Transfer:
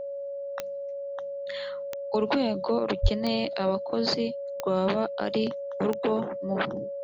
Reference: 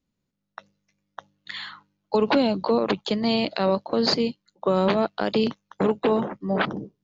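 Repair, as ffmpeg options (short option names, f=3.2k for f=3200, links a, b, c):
-filter_complex "[0:a]adeclick=t=4,bandreject=f=560:w=30,asplit=3[a][b][c];[a]afade=t=out:st=3.02:d=0.02[d];[b]highpass=f=140:w=0.5412,highpass=f=140:w=1.3066,afade=t=in:st=3.02:d=0.02,afade=t=out:st=3.14:d=0.02[e];[c]afade=t=in:st=3.14:d=0.02[f];[d][e][f]amix=inputs=3:normalize=0,asetnsamples=n=441:p=0,asendcmd='0.83 volume volume 5dB',volume=0dB"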